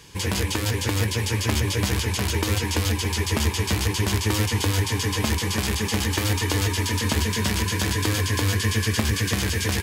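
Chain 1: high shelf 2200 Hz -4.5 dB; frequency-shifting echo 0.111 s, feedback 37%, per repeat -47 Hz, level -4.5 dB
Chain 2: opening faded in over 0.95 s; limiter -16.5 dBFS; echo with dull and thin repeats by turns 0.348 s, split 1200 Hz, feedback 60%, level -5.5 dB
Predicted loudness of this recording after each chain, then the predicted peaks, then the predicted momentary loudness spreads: -23.5, -26.0 LUFS; -7.5, -12.5 dBFS; 2, 2 LU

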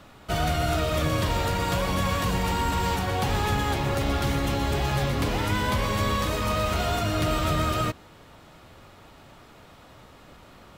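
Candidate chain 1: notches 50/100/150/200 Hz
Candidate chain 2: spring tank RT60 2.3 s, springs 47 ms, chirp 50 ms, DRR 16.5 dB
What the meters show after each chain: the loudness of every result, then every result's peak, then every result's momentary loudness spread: -26.0, -25.5 LUFS; -15.0, -14.5 dBFS; 1, 1 LU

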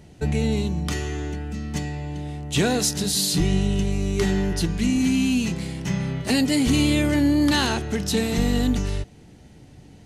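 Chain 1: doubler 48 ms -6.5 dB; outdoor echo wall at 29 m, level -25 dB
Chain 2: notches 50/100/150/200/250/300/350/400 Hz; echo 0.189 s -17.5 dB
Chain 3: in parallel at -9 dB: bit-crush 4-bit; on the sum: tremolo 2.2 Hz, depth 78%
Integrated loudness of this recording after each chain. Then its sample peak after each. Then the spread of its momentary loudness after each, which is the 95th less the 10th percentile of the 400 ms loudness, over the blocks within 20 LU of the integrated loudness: -22.0, -24.0, -23.0 LUFS; -8.0, -9.5, -7.5 dBFS; 11, 10, 13 LU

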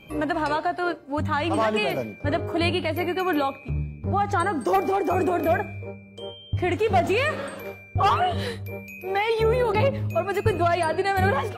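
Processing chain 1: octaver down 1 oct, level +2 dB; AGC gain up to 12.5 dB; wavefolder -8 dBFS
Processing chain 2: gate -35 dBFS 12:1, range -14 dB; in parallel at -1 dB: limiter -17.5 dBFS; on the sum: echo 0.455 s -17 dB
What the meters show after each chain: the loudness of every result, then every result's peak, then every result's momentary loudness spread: -16.5, -20.0 LUFS; -8.0, -6.5 dBFS; 10, 10 LU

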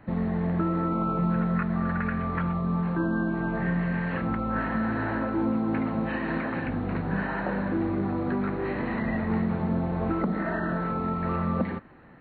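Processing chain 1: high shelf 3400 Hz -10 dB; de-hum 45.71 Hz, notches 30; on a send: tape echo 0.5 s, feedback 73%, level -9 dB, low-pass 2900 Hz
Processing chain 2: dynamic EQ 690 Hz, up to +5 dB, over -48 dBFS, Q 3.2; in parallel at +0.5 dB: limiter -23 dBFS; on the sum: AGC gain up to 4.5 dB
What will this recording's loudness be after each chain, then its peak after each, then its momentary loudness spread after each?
-28.0, -18.5 LUFS; -15.5, -6.5 dBFS; 3, 2 LU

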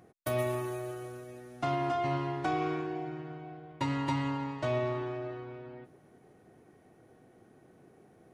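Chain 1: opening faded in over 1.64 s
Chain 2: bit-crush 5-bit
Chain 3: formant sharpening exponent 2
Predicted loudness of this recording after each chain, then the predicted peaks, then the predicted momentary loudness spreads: -34.5, -31.5, -34.5 LUFS; -18.5, -17.5, -20.0 dBFS; 16, 11, 14 LU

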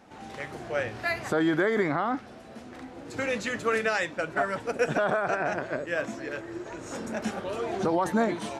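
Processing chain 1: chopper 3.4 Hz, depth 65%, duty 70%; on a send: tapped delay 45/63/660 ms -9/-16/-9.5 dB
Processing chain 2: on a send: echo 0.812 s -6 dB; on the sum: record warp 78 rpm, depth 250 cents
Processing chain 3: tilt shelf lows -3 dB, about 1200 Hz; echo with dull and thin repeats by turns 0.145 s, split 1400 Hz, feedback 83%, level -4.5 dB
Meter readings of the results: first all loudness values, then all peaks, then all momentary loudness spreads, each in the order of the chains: -29.5, -28.5, -28.0 LUFS; -13.0, -13.0, -12.0 dBFS; 12, 9, 10 LU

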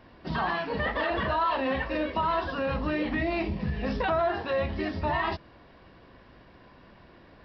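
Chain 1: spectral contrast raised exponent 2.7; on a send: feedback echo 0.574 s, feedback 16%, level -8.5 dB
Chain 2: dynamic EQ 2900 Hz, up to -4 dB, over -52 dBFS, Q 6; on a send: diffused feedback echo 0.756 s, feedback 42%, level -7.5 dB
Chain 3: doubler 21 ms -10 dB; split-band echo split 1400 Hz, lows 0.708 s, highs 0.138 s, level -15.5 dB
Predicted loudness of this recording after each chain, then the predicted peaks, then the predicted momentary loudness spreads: -29.5, -28.5, -28.5 LUFS; -17.5, -15.5, -15.0 dBFS; 9, 16, 18 LU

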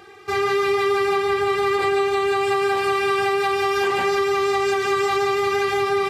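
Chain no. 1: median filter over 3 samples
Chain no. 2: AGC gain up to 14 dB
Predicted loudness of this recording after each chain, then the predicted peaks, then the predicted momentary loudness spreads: -20.5, -10.0 LUFS; -12.0, -1.5 dBFS; 1, 1 LU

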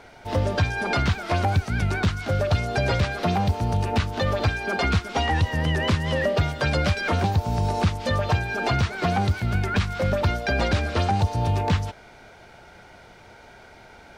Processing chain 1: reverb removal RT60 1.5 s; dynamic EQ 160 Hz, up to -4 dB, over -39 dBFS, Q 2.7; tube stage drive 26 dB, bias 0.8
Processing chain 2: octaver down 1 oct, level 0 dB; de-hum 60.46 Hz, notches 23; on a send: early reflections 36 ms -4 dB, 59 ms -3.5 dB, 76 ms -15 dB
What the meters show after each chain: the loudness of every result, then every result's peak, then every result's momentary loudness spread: -32.5, -20.5 LUFS; -22.0, -4.5 dBFS; 2, 2 LU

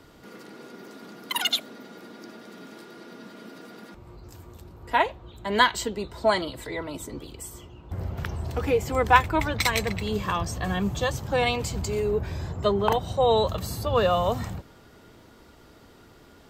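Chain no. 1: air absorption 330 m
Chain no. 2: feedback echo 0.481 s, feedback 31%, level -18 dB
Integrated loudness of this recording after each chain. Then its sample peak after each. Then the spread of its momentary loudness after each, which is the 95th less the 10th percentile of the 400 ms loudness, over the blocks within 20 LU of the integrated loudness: -27.5, -25.5 LUFS; -6.0, -3.5 dBFS; 22, 22 LU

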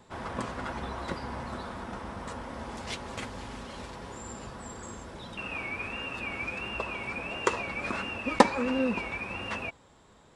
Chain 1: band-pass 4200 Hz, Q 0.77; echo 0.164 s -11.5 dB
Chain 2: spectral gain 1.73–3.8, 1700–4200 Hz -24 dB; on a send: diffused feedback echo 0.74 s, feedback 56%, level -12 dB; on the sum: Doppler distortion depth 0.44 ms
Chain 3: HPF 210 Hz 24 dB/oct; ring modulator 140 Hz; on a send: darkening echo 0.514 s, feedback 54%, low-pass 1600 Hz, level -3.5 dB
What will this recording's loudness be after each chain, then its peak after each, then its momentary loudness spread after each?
-39.5, -33.5, -36.0 LUFS; -11.5, -2.5, -6.0 dBFS; 14, 13, 14 LU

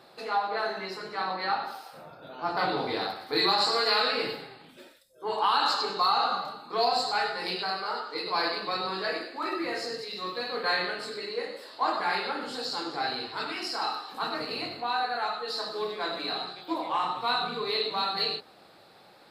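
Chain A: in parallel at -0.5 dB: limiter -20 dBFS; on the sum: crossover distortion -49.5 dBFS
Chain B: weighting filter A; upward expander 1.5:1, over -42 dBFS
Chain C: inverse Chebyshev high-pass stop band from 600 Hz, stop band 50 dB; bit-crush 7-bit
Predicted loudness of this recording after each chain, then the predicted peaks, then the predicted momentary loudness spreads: -24.5, -31.5, -32.5 LUFS; -8.5, -12.5, -15.0 dBFS; 9, 16, 11 LU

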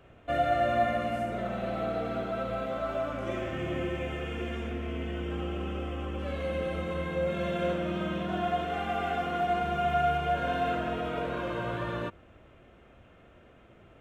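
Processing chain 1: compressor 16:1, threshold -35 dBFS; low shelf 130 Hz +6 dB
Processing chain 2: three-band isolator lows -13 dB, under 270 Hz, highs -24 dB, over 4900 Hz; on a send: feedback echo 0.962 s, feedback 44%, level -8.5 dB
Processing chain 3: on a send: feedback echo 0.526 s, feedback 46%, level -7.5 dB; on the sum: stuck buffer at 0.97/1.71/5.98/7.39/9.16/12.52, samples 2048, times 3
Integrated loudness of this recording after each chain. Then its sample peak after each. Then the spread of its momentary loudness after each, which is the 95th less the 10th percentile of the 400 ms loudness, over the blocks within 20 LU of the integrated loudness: -38.5, -32.0, -30.5 LUFS; -26.0, -15.5, -15.0 dBFS; 17, 13, 8 LU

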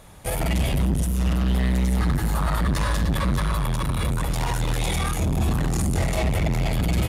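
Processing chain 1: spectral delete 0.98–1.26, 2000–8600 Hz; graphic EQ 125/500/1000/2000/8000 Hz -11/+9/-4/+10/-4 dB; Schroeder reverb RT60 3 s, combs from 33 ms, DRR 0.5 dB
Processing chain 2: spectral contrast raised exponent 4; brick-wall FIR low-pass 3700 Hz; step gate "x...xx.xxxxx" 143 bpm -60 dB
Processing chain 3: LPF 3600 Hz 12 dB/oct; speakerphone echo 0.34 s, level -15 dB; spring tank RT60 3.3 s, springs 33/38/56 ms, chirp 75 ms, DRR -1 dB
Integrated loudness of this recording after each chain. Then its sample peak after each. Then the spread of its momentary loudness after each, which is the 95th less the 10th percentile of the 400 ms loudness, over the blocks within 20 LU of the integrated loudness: -21.0, -28.0, -20.5 LUFS; -6.5, -15.0, -5.5 dBFS; 4, 7, 6 LU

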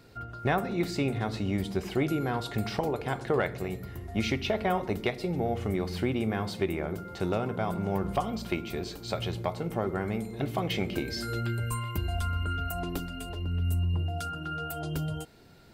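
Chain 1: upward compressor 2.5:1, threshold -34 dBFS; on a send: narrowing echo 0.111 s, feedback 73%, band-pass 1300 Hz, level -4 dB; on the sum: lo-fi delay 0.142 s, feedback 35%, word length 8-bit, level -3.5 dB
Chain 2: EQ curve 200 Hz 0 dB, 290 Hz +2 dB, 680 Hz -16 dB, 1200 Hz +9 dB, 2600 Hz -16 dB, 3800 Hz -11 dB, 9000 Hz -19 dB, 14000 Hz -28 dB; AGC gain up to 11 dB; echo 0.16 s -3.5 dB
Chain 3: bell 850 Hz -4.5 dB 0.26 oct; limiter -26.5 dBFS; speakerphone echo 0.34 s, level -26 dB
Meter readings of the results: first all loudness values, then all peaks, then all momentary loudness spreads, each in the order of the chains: -29.5, -19.5, -36.0 LUFS; -14.0, -4.5, -26.5 dBFS; 7, 7, 4 LU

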